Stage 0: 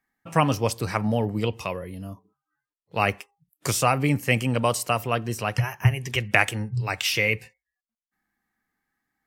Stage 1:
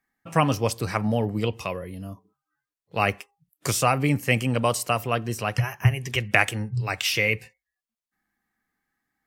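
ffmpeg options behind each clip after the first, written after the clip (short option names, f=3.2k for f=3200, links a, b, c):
-af "bandreject=f=910:w=22"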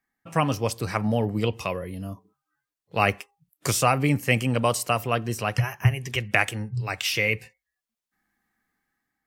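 -af "dynaudnorm=f=350:g=5:m=6dB,volume=-2.5dB"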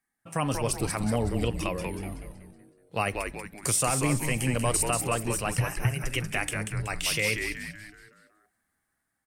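-filter_complex "[0:a]equalizer=f=9.3k:w=2.4:g=14,alimiter=limit=-11dB:level=0:latency=1:release=56,asplit=2[a][b];[b]asplit=6[c][d][e][f][g][h];[c]adelay=187,afreqshift=-140,volume=-5dB[i];[d]adelay=374,afreqshift=-280,volume=-11.9dB[j];[e]adelay=561,afreqshift=-420,volume=-18.9dB[k];[f]adelay=748,afreqshift=-560,volume=-25.8dB[l];[g]adelay=935,afreqshift=-700,volume=-32.7dB[m];[h]adelay=1122,afreqshift=-840,volume=-39.7dB[n];[i][j][k][l][m][n]amix=inputs=6:normalize=0[o];[a][o]amix=inputs=2:normalize=0,volume=-3.5dB"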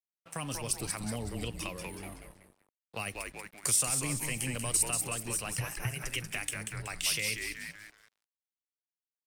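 -filter_complex "[0:a]aeval=exprs='sgn(val(0))*max(abs(val(0))-0.00316,0)':c=same,acrossover=split=290|3000[a][b][c];[b]acompressor=threshold=-38dB:ratio=4[d];[a][d][c]amix=inputs=3:normalize=0,lowshelf=f=470:g=-9.5"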